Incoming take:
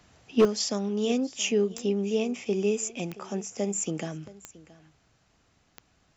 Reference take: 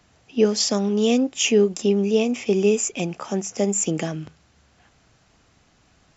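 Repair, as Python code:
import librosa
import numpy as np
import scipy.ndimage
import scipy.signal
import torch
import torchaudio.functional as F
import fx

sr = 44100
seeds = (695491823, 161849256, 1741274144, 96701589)

y = fx.fix_declip(x, sr, threshold_db=-13.5)
y = fx.fix_declick_ar(y, sr, threshold=10.0)
y = fx.fix_echo_inverse(y, sr, delay_ms=674, level_db=-20.0)
y = fx.fix_level(y, sr, at_s=0.45, step_db=7.5)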